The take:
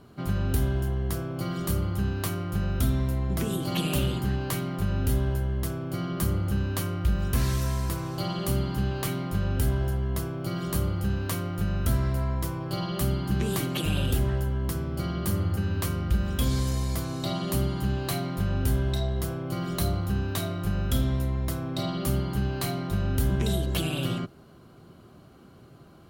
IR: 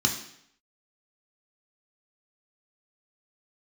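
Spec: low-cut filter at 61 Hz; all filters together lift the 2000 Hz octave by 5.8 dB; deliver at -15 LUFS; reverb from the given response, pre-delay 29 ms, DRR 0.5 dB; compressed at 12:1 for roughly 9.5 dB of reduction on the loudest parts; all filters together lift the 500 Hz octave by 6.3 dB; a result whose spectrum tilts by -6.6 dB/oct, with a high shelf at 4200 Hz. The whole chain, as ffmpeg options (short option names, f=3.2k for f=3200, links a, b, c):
-filter_complex "[0:a]highpass=61,equalizer=f=500:t=o:g=8.5,equalizer=f=2k:t=o:g=8.5,highshelf=f=4.2k:g=-5,acompressor=threshold=-30dB:ratio=12,asplit=2[a][b];[1:a]atrim=start_sample=2205,adelay=29[c];[b][c]afir=irnorm=-1:irlink=0,volume=-11dB[d];[a][d]amix=inputs=2:normalize=0,volume=14dB"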